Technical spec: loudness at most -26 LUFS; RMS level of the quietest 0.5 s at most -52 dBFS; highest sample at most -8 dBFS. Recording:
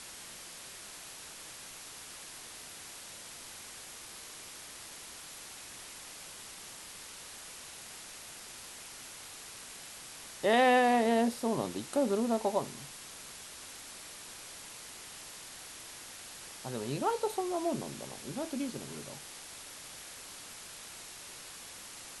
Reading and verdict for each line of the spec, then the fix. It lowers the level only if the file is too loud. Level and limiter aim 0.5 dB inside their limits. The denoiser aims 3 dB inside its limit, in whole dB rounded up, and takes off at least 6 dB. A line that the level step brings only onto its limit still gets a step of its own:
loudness -37.0 LUFS: pass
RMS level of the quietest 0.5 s -48 dBFS: fail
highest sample -15.5 dBFS: pass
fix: noise reduction 7 dB, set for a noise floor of -48 dBFS

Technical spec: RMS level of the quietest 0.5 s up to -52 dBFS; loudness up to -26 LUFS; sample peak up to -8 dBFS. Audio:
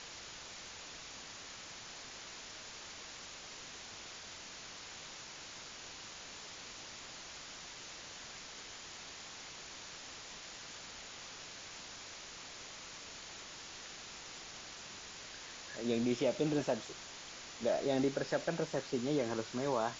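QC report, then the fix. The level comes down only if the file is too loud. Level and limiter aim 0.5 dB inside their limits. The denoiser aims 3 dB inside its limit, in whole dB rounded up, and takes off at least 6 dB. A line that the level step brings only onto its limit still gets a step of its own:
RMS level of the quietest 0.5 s -50 dBFS: fail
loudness -41.5 LUFS: pass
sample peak -21.0 dBFS: pass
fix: noise reduction 6 dB, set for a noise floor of -50 dBFS

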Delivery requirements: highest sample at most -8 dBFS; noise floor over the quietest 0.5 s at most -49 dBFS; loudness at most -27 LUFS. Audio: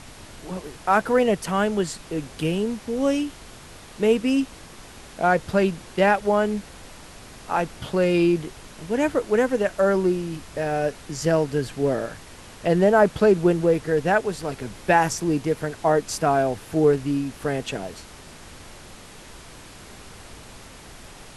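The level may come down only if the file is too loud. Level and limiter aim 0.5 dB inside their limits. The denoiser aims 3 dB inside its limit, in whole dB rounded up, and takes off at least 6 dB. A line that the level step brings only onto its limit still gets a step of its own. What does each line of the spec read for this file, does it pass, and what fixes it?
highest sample -5.5 dBFS: fail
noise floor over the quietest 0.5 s -43 dBFS: fail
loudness -23.0 LUFS: fail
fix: noise reduction 6 dB, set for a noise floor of -43 dBFS; trim -4.5 dB

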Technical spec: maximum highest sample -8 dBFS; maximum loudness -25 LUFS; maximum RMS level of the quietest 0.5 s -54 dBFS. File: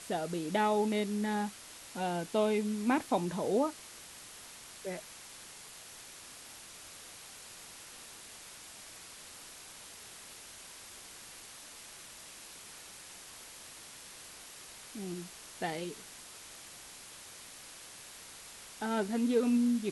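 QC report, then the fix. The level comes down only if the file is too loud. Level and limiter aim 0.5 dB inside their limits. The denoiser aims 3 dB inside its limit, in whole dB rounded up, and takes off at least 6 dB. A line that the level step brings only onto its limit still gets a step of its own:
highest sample -17.0 dBFS: pass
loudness -37.5 LUFS: pass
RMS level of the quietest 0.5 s -51 dBFS: fail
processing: noise reduction 6 dB, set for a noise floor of -51 dBFS

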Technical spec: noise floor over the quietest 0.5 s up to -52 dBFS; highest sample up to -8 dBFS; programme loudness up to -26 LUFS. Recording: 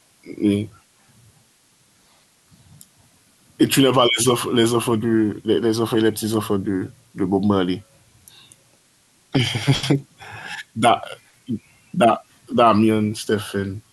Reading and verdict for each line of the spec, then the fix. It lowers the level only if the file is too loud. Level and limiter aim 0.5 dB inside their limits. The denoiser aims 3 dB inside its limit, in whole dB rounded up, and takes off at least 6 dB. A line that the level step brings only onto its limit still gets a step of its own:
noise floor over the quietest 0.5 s -58 dBFS: pass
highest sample -4.5 dBFS: fail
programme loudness -20.0 LUFS: fail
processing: trim -6.5 dB

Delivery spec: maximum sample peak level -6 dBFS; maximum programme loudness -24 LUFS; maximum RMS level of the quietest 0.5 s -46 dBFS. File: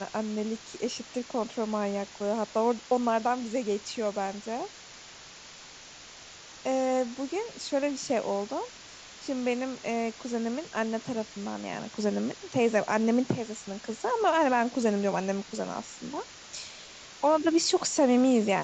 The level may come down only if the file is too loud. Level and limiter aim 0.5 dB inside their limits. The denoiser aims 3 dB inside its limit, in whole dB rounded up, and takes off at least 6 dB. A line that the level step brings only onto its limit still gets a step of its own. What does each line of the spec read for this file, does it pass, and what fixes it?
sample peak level -12.0 dBFS: pass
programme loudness -29.5 LUFS: pass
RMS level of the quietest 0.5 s -48 dBFS: pass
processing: none needed

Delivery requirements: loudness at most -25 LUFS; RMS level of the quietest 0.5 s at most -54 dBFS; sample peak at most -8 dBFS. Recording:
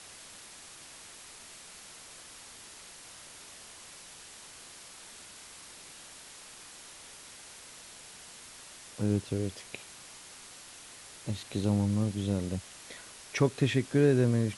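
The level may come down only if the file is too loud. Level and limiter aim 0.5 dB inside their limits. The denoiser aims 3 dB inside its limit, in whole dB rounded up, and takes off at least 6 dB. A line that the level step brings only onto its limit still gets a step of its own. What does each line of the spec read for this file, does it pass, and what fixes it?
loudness -30.0 LUFS: pass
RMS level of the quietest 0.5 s -50 dBFS: fail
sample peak -12.0 dBFS: pass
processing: noise reduction 7 dB, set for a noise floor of -50 dBFS

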